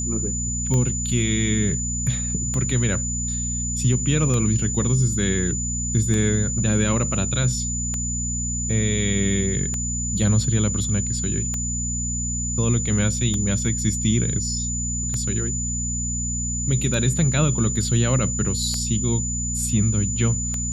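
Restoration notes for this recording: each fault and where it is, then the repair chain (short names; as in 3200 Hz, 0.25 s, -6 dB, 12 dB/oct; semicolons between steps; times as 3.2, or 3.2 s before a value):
hum 60 Hz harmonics 4 -28 dBFS
tick 33 1/3 rpm -13 dBFS
tone 7000 Hz -26 dBFS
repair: de-click; de-hum 60 Hz, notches 4; notch 7000 Hz, Q 30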